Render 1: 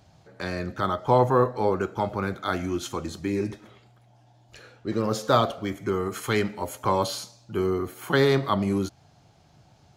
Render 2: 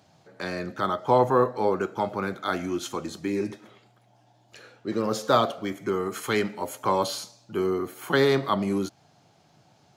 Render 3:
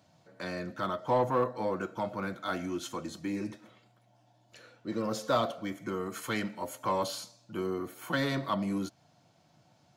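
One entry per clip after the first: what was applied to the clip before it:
HPF 160 Hz 12 dB/oct
notch comb 410 Hz; in parallel at -3.5 dB: soft clip -22.5 dBFS, distortion -10 dB; on the sum: gain -8.5 dB

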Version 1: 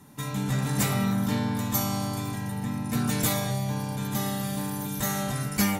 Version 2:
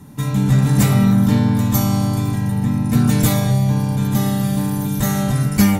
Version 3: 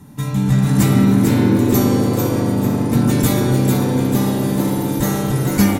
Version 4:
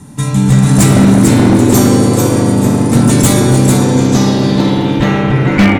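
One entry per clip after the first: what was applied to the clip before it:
low shelf 310 Hz +11 dB; gain +4.5 dB
frequency-shifting echo 0.445 s, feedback 42%, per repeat +130 Hz, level -5 dB; on a send at -8 dB: reverb RT60 4.1 s, pre-delay 36 ms; on the sum: gain -1 dB
low-pass sweep 8800 Hz -> 2400 Hz, 3.74–5.24; wavefolder -8 dBFS; gain +7 dB

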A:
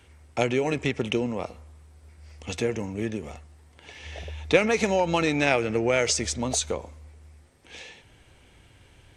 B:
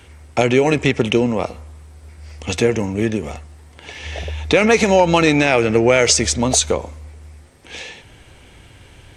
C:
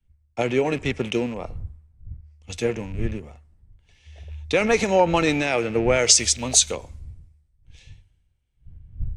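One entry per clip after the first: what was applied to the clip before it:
maximiser +11.5 dB; gain -1 dB
rattling part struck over -22 dBFS, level -20 dBFS; wind noise 100 Hz -32 dBFS; three-band expander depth 100%; gain -8.5 dB

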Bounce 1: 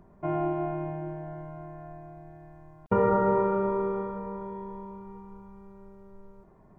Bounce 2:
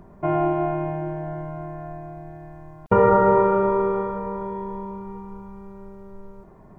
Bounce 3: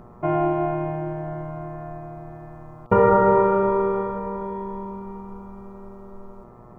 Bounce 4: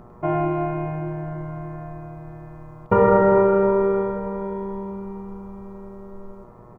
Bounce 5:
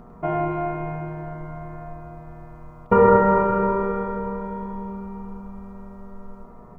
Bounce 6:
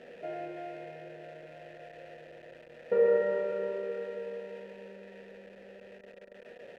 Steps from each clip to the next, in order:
dynamic EQ 230 Hz, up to -5 dB, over -41 dBFS, Q 1.3; gain +8.5 dB
buzz 120 Hz, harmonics 11, -50 dBFS -2 dB/oct
echo 0.102 s -8 dB
shoebox room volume 3800 m³, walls furnished, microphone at 1.7 m; gain -1 dB
zero-crossing step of -29 dBFS; vowel filter e; gain -2 dB

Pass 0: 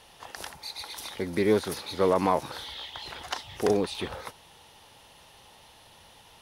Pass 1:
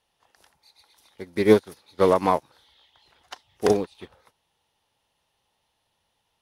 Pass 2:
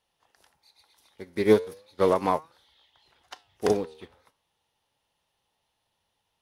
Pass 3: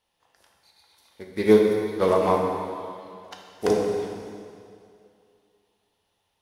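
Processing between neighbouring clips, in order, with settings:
upward expander 2.5:1, over -38 dBFS; gain +9 dB
flange 0.38 Hz, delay 5.1 ms, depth 7.8 ms, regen +87%; gain +1 dB
plate-style reverb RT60 2.4 s, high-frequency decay 0.9×, DRR 0 dB

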